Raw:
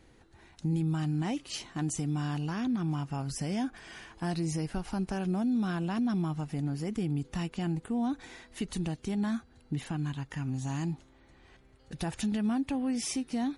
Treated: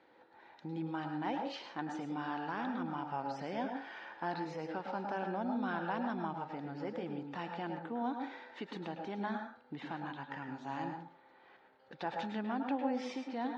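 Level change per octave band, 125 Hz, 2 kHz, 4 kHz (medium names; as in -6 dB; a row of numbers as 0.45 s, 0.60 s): -15.5 dB, +0.5 dB, -7.5 dB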